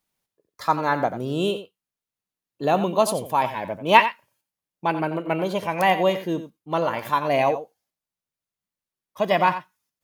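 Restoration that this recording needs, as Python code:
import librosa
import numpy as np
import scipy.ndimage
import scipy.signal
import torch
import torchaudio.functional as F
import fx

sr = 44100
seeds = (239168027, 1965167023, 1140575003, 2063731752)

y = fx.fix_echo_inverse(x, sr, delay_ms=89, level_db=-12.0)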